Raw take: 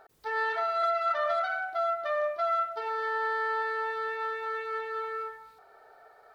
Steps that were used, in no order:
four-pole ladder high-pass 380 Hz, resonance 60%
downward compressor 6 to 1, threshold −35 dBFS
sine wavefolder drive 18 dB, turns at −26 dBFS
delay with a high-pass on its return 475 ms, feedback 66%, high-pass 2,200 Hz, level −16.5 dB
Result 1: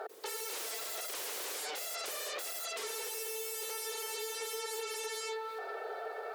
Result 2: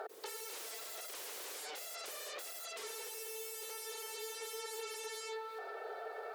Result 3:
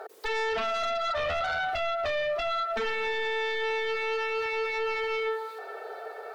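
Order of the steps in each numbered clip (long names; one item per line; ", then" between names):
delay with a high-pass on its return, then sine wavefolder, then four-pole ladder high-pass, then downward compressor
delay with a high-pass on its return, then sine wavefolder, then downward compressor, then four-pole ladder high-pass
delay with a high-pass on its return, then downward compressor, then four-pole ladder high-pass, then sine wavefolder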